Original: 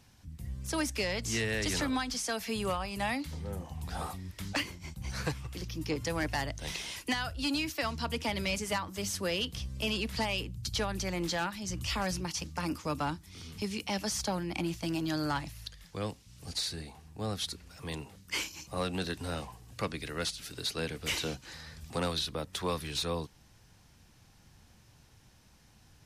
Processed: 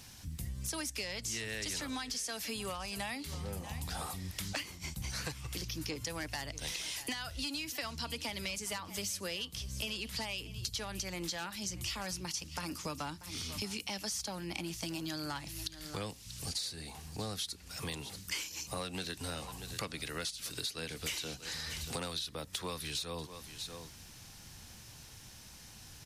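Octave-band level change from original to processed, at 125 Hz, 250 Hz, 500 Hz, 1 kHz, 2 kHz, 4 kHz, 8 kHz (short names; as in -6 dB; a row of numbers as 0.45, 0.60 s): -5.5, -7.5, -7.5, -7.0, -5.0, -2.0, 0.0 dB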